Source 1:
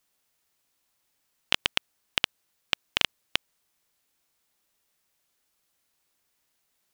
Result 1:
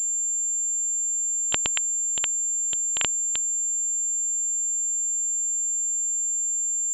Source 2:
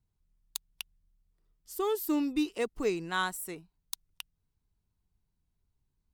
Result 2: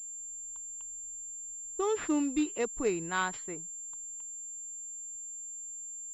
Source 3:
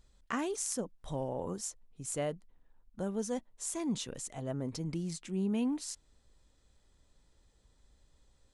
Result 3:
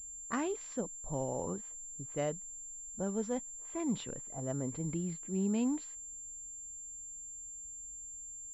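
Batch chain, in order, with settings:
low-pass that shuts in the quiet parts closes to 320 Hz, open at −29.5 dBFS
switching amplifier with a slow clock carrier 7,300 Hz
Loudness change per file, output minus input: +6.5, −1.5, −1.5 LU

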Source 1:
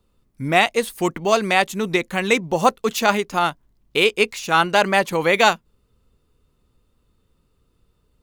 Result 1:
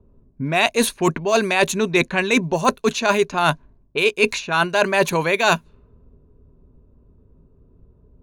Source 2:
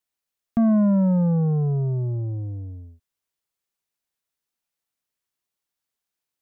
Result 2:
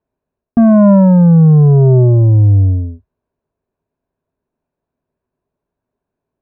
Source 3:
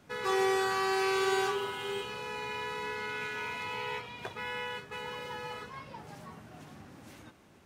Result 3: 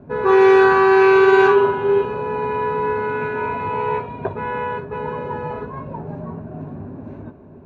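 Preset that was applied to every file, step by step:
low-pass that shuts in the quiet parts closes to 560 Hz, open at −16 dBFS
EQ curve with evenly spaced ripples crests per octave 1.5, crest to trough 7 dB
reversed playback
downward compressor 12 to 1, threshold −26 dBFS
reversed playback
normalise the peak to −2 dBFS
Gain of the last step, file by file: +12.0, +21.0, +18.5 decibels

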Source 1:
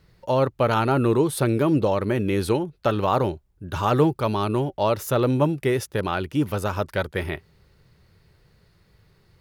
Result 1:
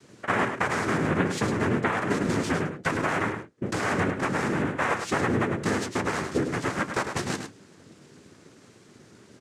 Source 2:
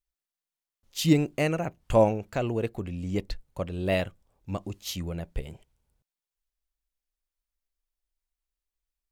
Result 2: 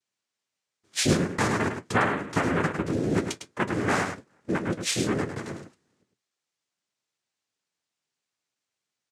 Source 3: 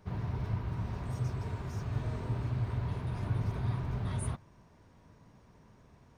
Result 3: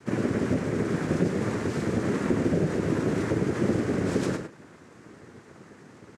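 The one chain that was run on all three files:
notch filter 2,700 Hz
downward compressor 6 to 1, threshold −31 dBFS
cochlear-implant simulation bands 3
flanger 0.56 Hz, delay 8.4 ms, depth 4.5 ms, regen −57%
on a send: single-tap delay 104 ms −7.5 dB
on the sum: loudness normalisation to −27 LKFS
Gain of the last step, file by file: +11.0, +13.5, +15.0 decibels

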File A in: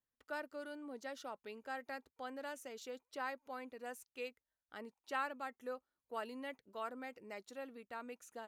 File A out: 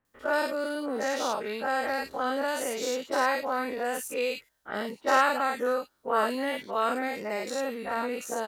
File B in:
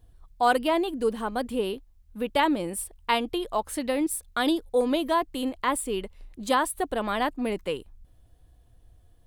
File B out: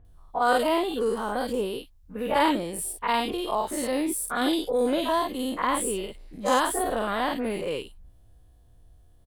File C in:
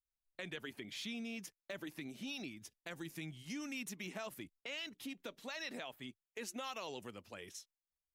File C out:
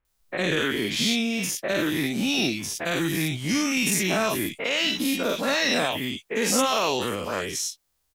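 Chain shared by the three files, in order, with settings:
every bin's largest magnitude spread in time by 120 ms
multiband delay without the direct sound lows, highs 50 ms, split 2,300 Hz
normalise the peak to −9 dBFS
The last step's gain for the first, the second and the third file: +13.0, −4.0, +16.5 decibels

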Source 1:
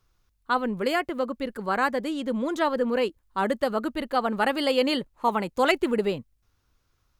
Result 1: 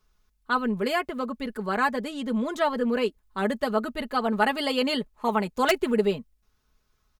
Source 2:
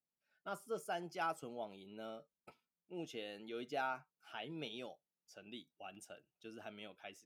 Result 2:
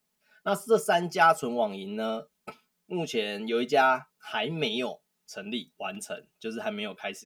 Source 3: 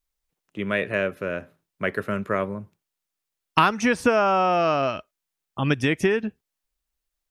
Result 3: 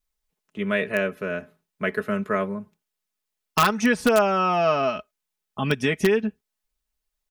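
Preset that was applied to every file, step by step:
comb filter 4.7 ms, depth 64%
in parallel at −3 dB: wrap-around overflow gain 7.5 dB
on the sum: normalise the peak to −9 dBFS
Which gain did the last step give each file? −6.0, +11.0, −6.0 decibels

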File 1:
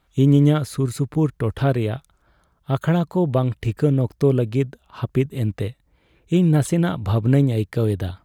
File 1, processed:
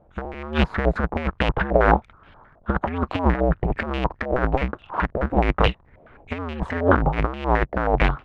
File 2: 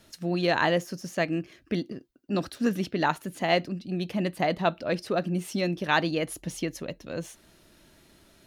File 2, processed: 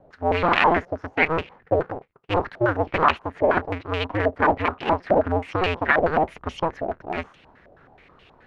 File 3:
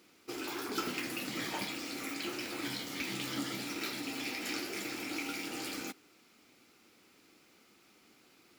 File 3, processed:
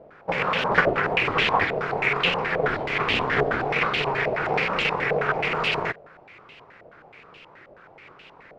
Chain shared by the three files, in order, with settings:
sub-harmonics by changed cycles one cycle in 2, inverted
compressor whose output falls as the input rises −23 dBFS, ratio −0.5
low-pass on a step sequencer 9.4 Hz 640–2,800 Hz
loudness normalisation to −23 LKFS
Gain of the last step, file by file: +2.5, +2.5, +12.5 decibels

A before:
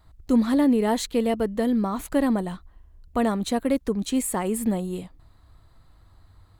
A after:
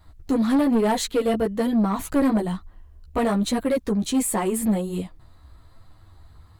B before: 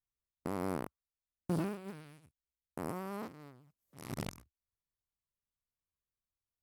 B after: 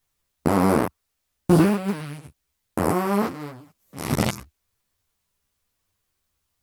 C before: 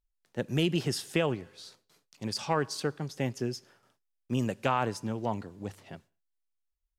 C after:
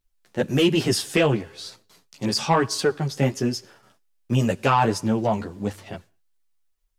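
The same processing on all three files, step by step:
multi-voice chorus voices 2, 1.1 Hz, delay 12 ms, depth 3 ms
soft clipping −22 dBFS
loudness normalisation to −23 LKFS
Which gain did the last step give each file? +7.0, +21.5, +13.5 decibels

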